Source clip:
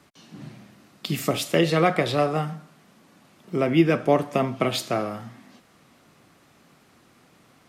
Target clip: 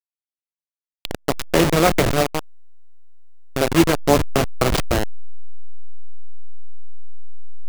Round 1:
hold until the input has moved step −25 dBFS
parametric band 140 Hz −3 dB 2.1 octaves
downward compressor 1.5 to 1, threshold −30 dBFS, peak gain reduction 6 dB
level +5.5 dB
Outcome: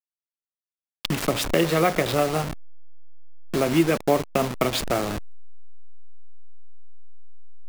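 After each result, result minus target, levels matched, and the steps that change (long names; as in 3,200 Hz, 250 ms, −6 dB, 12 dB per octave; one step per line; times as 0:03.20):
hold until the input has moved: distortion −12 dB; downward compressor: peak gain reduction +6 dB
change: hold until the input has moved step −16 dBFS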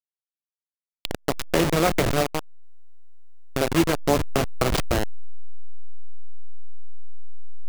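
downward compressor: peak gain reduction +6 dB
remove: downward compressor 1.5 to 1, threshold −30 dBFS, peak gain reduction 6 dB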